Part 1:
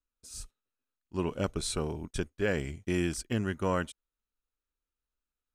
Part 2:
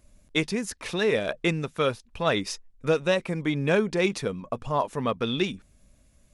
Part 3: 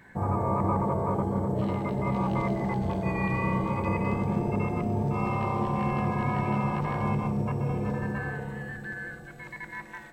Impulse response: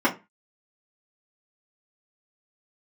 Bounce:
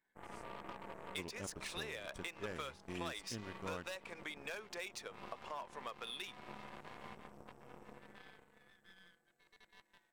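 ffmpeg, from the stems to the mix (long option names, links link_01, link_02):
-filter_complex "[0:a]aeval=exprs='0.141*(cos(1*acos(clip(val(0)/0.141,-1,1)))-cos(1*PI/2))+0.0112*(cos(7*acos(clip(val(0)/0.141,-1,1)))-cos(7*PI/2))':channel_layout=same,volume=-16dB[link_01];[1:a]highpass=780,adynamicsmooth=sensitivity=7.5:basefreq=4400,asoftclip=type=hard:threshold=-21dB,adelay=800,volume=-5dB[link_02];[2:a]highpass=270,aeval=exprs='0.15*(cos(1*acos(clip(val(0)/0.15,-1,1)))-cos(1*PI/2))+0.0335*(cos(3*acos(clip(val(0)/0.15,-1,1)))-cos(3*PI/2))+0.00841*(cos(4*acos(clip(val(0)/0.15,-1,1)))-cos(4*PI/2))+0.00473*(cos(7*acos(clip(val(0)/0.15,-1,1)))-cos(7*PI/2))+0.00376*(cos(8*acos(clip(val(0)/0.15,-1,1)))-cos(8*PI/2))':channel_layout=same,volume=-12.5dB[link_03];[link_02][link_03]amix=inputs=2:normalize=0,highshelf=frequency=5300:gain=8.5,acompressor=threshold=-43dB:ratio=6,volume=0dB[link_04];[link_01][link_04]amix=inputs=2:normalize=0"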